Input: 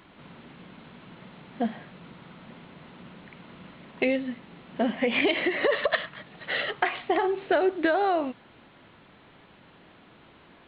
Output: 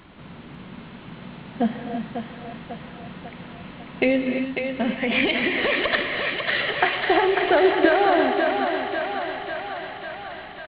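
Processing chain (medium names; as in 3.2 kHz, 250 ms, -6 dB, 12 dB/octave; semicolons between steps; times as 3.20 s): bass shelf 110 Hz +10 dB; gated-style reverb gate 370 ms rising, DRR 6 dB; resampled via 11.025 kHz; 4.45–6.60 s: peaking EQ 470 Hz -7 dB 1.7 oct; thinning echo 546 ms, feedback 73%, high-pass 420 Hz, level -4.5 dB; trim +4 dB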